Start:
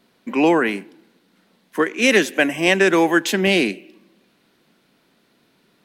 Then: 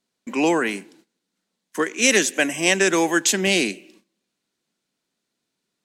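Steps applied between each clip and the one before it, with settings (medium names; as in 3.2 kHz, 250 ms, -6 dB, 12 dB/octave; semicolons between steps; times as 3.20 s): gate -49 dBFS, range -17 dB; peaking EQ 7.2 kHz +15 dB 1.2 oct; trim -4 dB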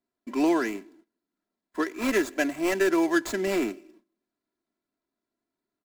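median filter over 15 samples; comb 3 ms, depth 63%; trim -5.5 dB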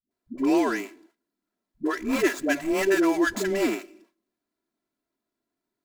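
phase dispersion highs, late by 110 ms, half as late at 320 Hz; trim +1.5 dB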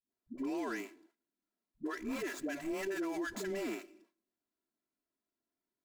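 peak limiter -21.5 dBFS, peak gain reduction 11 dB; trim -9 dB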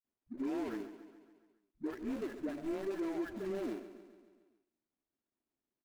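median filter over 41 samples; feedback delay 139 ms, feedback 59%, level -13.5 dB; trim +1 dB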